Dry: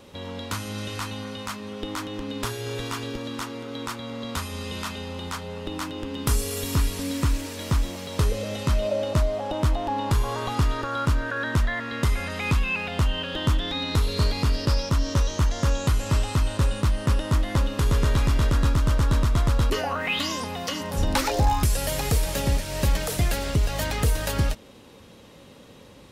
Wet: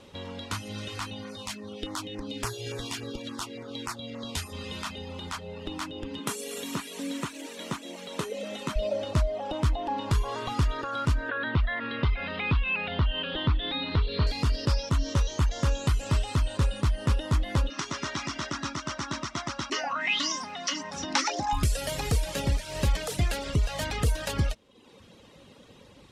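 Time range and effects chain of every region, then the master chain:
1.29–4.53 high shelf 3400 Hz +5 dB + LFO notch saw down 3.5 Hz 880–4100 Hz
6.19–8.76 HPF 180 Hz 24 dB/oct + bell 4900 Hz -7.5 dB 0.29 oct
11.29–14.27 steep low-pass 4100 Hz + upward compressor, threshold -23 dBFS
17.7–21.53 speaker cabinet 260–7700 Hz, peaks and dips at 300 Hz +3 dB, 480 Hz -10 dB, 1300 Hz +3 dB, 2000 Hz +4 dB, 5700 Hz +10 dB + notch 460 Hz, Q 5.1
whole clip: LPF 10000 Hz 12 dB/oct; reverb removal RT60 0.76 s; bell 3100 Hz +2 dB; gain -2.5 dB

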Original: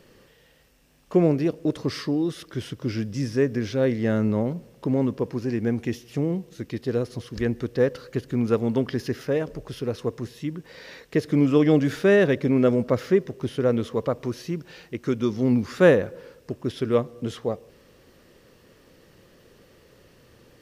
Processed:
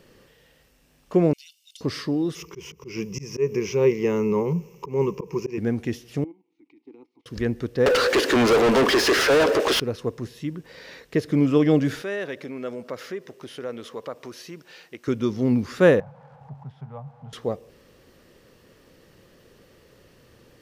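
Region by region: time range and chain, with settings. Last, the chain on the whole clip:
1.33–1.81 Chebyshev high-pass 2900 Hz, order 4 + comb 1.4 ms, depth 58%
2.35–5.58 ripple EQ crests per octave 0.77, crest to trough 18 dB + auto swell 0.162 s
6.24–7.26 tone controls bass -15 dB, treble -1 dB + level quantiser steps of 15 dB + vowel filter u
7.86–9.8 HPF 290 Hz 24 dB/oct + overdrive pedal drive 39 dB, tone 3400 Hz, clips at -10.5 dBFS
12.02–15.08 compressor 2:1, threshold -26 dBFS + HPF 690 Hz 6 dB/oct
16–17.33 zero-crossing step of -35 dBFS + double band-pass 340 Hz, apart 2.5 oct + three-band squash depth 40%
whole clip: dry

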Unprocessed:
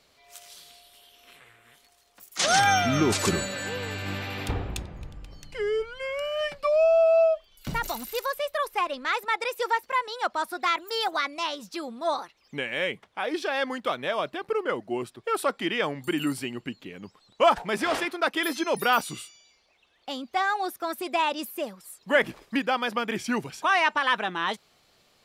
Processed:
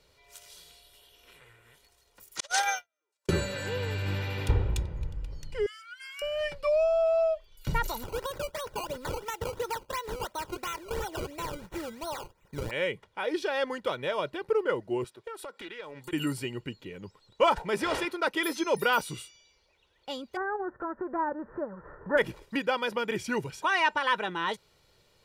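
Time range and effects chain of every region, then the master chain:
2.4–3.29 HPF 510 Hz 24 dB/oct + gate -21 dBFS, range -57 dB + high shelf 10000 Hz +8.5 dB
5.66–6.22 steep high-pass 1200 Hz 96 dB/oct + high shelf 7600 Hz +10.5 dB + three-band expander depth 40%
8.03–12.71 compressor 4:1, threshold -29 dBFS + decimation with a swept rate 17× 2.9 Hz
15.04–16.13 HPF 410 Hz 6 dB/oct + compressor, threshold -36 dBFS + Doppler distortion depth 0.27 ms
20.35–22.17 spectral whitening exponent 0.6 + rippled Chebyshev low-pass 1800 Hz, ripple 3 dB + upward compressor, threshold -29 dBFS
whole clip: low shelf 290 Hz +8.5 dB; comb 2.1 ms, depth 52%; gain -4.5 dB

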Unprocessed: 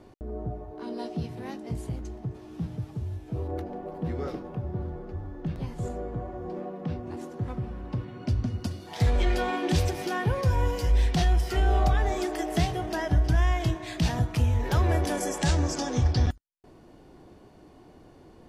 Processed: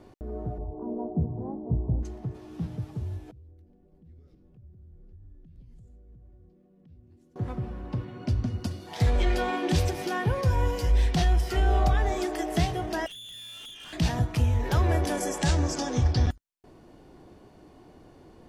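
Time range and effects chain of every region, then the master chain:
0.58–2.03 steep low-pass 960 Hz + low shelf 160 Hz +10 dB
3.31–7.36 compressor 10:1, threshold -35 dBFS + passive tone stack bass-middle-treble 10-0-1
13.06–13.93 inverted band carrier 3500 Hz + compressor 10:1, threshold -32 dBFS + tube stage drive 41 dB, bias 0.5
whole clip: dry

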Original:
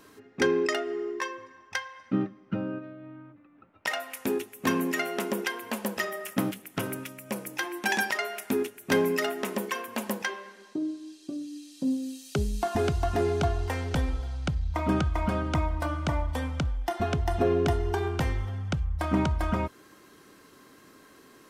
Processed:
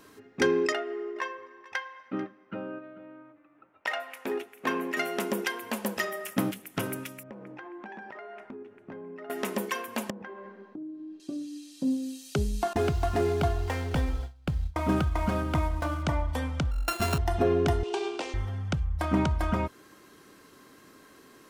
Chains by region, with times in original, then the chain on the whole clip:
0.72–4.97 tone controls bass -15 dB, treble -12 dB + echo 0.44 s -18.5 dB
7.23–9.3 LPF 1300 Hz + compressor 10:1, threshold -39 dBFS
10.1–11.2 LPF 1400 Hz + low shelf 360 Hz +11 dB + compressor 5:1, threshold -39 dBFS
12.73–16.03 CVSD 64 kbps + gate with hold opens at -20 dBFS, closes at -30 dBFS + running maximum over 3 samples
16.71–17.18 sample sorter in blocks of 32 samples + doubler 46 ms -10.5 dB + mismatched tape noise reduction decoder only
17.83–18.34 median filter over 15 samples + elliptic band-pass 320–8400 Hz + resonant high shelf 2200 Hz +6.5 dB, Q 3
whole clip: dry

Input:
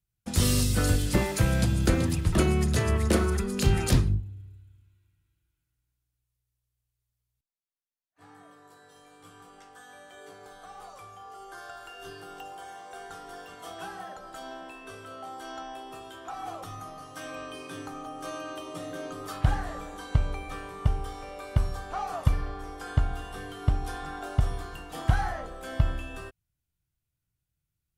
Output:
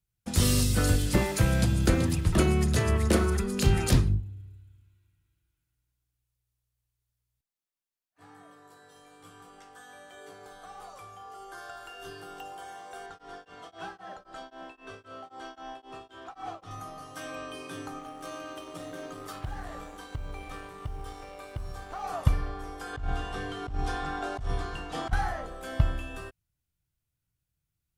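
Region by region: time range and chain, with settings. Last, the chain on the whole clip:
13.06–16.71 block floating point 5-bit + LPF 5300 Hz + beating tremolo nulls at 3.8 Hz
17.99–22.04 G.711 law mismatch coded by A + compressor 3:1, threshold -34 dBFS
22.93–25.13 block floating point 7-bit + LPF 6800 Hz + negative-ratio compressor -30 dBFS
whole clip: dry

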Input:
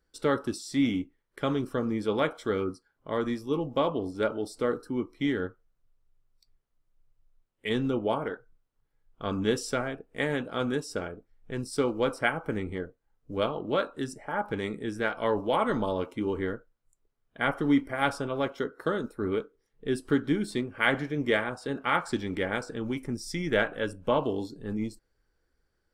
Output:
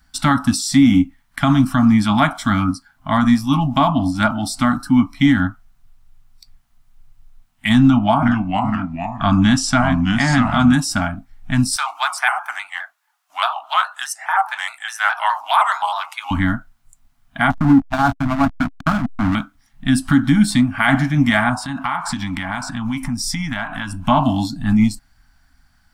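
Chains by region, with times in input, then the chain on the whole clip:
7.81–10.73 LPF 7300 Hz + echoes that change speed 0.413 s, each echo -2 st, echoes 2, each echo -6 dB
11.76–16.31 inverse Chebyshev high-pass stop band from 250 Hz, stop band 60 dB + shaped vibrato square 4.8 Hz, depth 100 cents
17.5–19.35 steep low-pass 1700 Hz 96 dB/oct + backlash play -27.5 dBFS
21.54–24.06 bell 1000 Hz +9.5 dB 0.41 oct + compressor 4:1, threshold -38 dBFS
whole clip: elliptic band-stop 270–690 Hz, stop band 40 dB; dynamic EQ 2800 Hz, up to -7 dB, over -46 dBFS, Q 0.78; maximiser +22.5 dB; gain -3 dB

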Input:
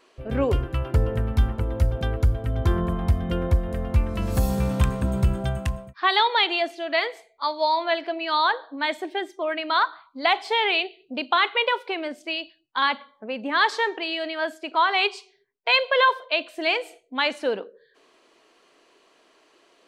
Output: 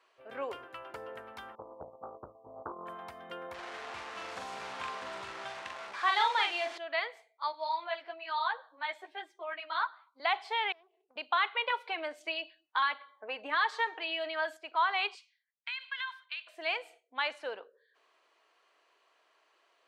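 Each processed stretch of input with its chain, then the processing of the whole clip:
1.55–2.86 transient shaper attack +5 dB, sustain -10 dB + brick-wall FIR low-pass 1200 Hz + Doppler distortion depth 0.74 ms
3.54–6.78 delta modulation 64 kbps, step -26 dBFS + LPF 5700 Hz + doubler 43 ms -3.5 dB
7.52–10.2 HPF 260 Hz + ensemble effect
10.72–11.16 polynomial smoothing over 65 samples + compressor 16:1, threshold -46 dBFS + Doppler distortion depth 0.74 ms
11.7–14.57 notch 5200 Hz, Q 18 + comb 6.5 ms, depth 50% + three-band squash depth 70%
15.15–16.47 HPF 1500 Hz 24 dB/oct + compressor, threshold -24 dBFS
whole clip: HPF 820 Hz 12 dB/oct; high shelf 3100 Hz -11 dB; gain -5 dB

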